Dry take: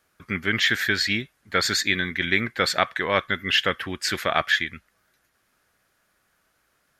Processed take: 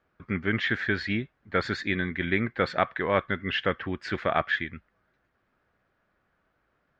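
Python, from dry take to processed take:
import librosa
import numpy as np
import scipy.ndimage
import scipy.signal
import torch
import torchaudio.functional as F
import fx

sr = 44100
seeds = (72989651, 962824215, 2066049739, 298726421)

y = fx.spacing_loss(x, sr, db_at_10k=39)
y = F.gain(torch.from_numpy(y), 1.5).numpy()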